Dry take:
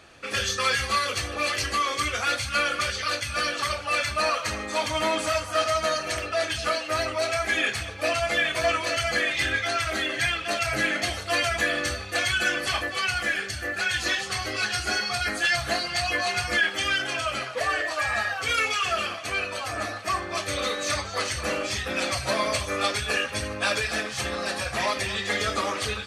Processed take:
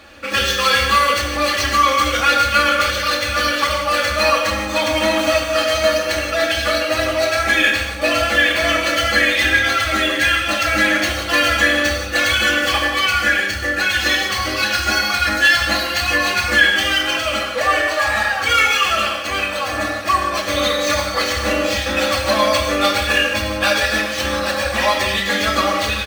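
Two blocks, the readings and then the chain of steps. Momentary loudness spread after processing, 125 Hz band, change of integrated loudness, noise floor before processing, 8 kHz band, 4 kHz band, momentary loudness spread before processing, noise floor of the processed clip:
5 LU, +7.0 dB, +9.5 dB, -35 dBFS, +6.0 dB, +9.5 dB, 5 LU, -24 dBFS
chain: median filter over 5 samples; comb 3.6 ms, depth 74%; gated-style reverb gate 200 ms flat, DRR 3.5 dB; trim +6.5 dB

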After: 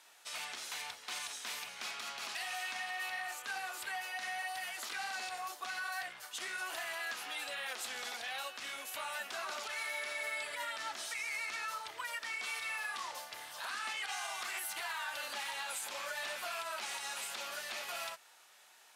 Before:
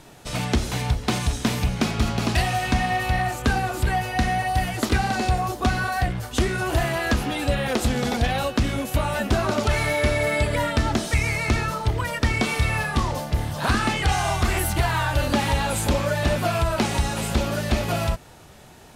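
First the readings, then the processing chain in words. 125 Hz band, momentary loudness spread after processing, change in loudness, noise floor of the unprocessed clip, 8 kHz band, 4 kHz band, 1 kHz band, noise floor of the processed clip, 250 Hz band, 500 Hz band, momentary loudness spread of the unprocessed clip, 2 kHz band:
under -40 dB, 4 LU, -15.5 dB, -46 dBFS, -10.5 dB, -11.0 dB, -16.5 dB, -61 dBFS, -38.0 dB, -23.0 dB, 3 LU, -11.5 dB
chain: high-pass 1.2 kHz 12 dB/octave; peak limiter -22 dBFS, peak gain reduction 10.5 dB; trim -8.5 dB

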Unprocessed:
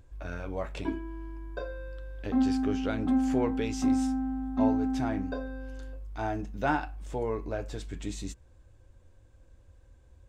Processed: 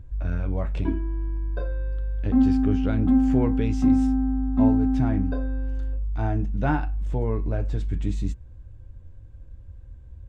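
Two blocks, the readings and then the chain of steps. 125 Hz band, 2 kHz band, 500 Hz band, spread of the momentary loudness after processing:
+13.5 dB, -0.5 dB, +1.5 dB, 10 LU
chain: tone controls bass +14 dB, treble -8 dB

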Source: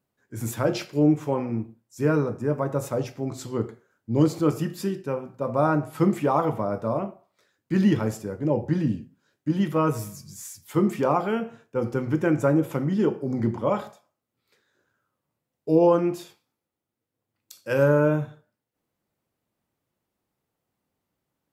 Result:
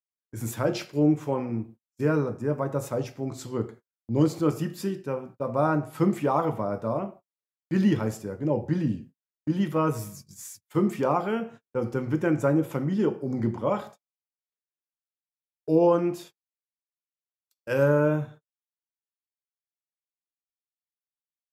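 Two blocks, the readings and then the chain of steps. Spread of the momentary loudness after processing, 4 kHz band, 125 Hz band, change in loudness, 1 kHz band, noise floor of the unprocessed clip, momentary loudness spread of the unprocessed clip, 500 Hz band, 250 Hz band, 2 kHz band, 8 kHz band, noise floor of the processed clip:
13 LU, -2.0 dB, -2.0 dB, -2.0 dB, -2.0 dB, -84 dBFS, 13 LU, -2.0 dB, -2.0 dB, -2.0 dB, -2.0 dB, under -85 dBFS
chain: gate -42 dBFS, range -39 dB; trim -2 dB

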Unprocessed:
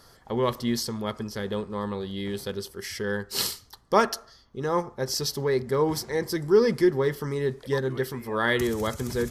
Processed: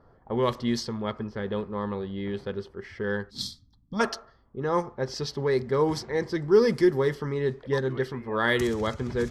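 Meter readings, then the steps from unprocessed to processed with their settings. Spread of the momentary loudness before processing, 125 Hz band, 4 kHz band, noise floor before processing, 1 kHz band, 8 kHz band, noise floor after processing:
10 LU, 0.0 dB, -4.0 dB, -55 dBFS, -2.0 dB, -9.0 dB, -60 dBFS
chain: time-frequency box 3.30–4.00 s, 310–3200 Hz -23 dB; level-controlled noise filter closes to 900 Hz, open at -18.5 dBFS

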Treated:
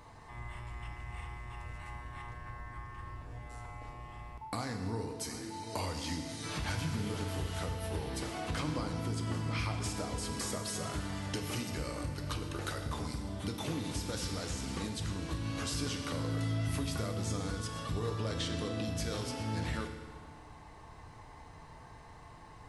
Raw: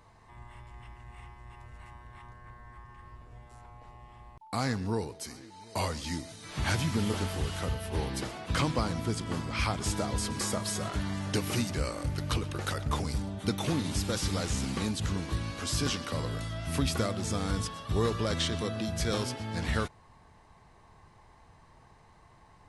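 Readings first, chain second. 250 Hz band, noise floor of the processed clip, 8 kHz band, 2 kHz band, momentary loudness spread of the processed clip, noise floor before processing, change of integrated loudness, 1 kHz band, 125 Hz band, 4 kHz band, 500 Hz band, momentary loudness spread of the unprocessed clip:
-5.0 dB, -52 dBFS, -4.5 dB, -4.5 dB, 15 LU, -58 dBFS, -5.5 dB, -4.5 dB, -4.0 dB, -5.0 dB, -5.5 dB, 20 LU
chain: compression 4:1, threshold -41 dBFS, peak gain reduction 15 dB; FDN reverb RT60 1.7 s, low-frequency decay 1×, high-frequency decay 0.9×, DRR 4 dB; trim +4 dB

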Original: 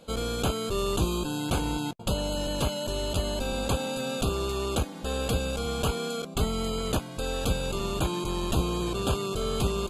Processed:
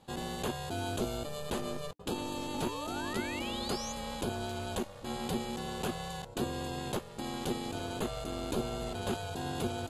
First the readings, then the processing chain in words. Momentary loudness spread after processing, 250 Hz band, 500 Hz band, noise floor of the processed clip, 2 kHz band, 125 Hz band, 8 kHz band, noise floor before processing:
3 LU, -5.5 dB, -7.5 dB, -48 dBFS, -4.0 dB, -10.0 dB, -7.5 dB, -40 dBFS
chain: painted sound rise, 2.53–3.93 s, 510–6800 Hz -35 dBFS; ring modulator 300 Hz; trim -5 dB

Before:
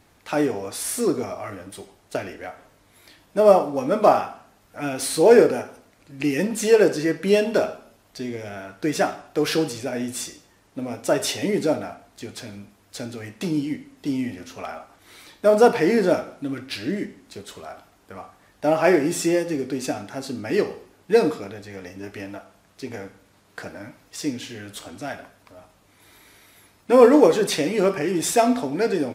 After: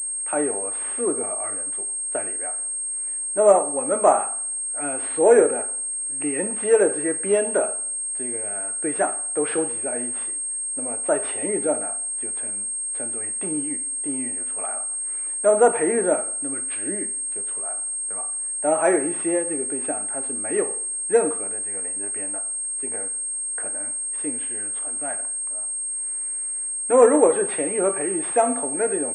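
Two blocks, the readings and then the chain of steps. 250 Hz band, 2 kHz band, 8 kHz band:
-5.0 dB, -3.0 dB, +14.0 dB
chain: CVSD coder 64 kbps; three-band isolator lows -14 dB, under 300 Hz, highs -19 dB, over 2.3 kHz; class-D stage that switches slowly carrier 8.5 kHz

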